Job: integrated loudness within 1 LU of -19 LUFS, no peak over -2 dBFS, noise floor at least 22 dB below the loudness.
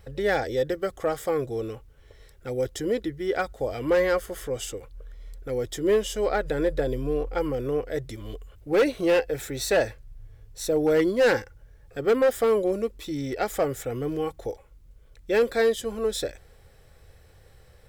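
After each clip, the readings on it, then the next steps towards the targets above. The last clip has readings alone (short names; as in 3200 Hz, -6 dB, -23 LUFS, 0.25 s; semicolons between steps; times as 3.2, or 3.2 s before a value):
clipped 1.0%; flat tops at -15.5 dBFS; loudness -26.0 LUFS; peak -15.5 dBFS; loudness target -19.0 LUFS
-> clip repair -15.5 dBFS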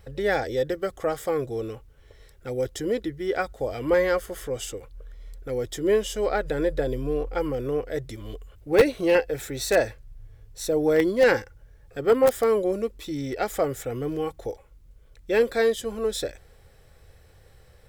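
clipped 0.0%; loudness -25.5 LUFS; peak -6.5 dBFS; loudness target -19.0 LUFS
-> gain +6.5 dB; limiter -2 dBFS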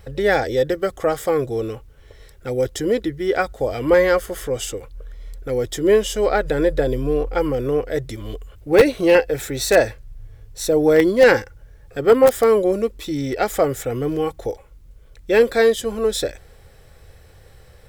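loudness -19.0 LUFS; peak -2.0 dBFS; noise floor -47 dBFS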